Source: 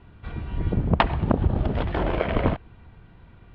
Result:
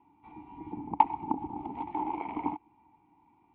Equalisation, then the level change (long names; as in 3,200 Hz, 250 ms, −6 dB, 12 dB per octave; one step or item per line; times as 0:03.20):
formant filter u
parametric band 870 Hz +14.5 dB 0.74 octaves
−3.0 dB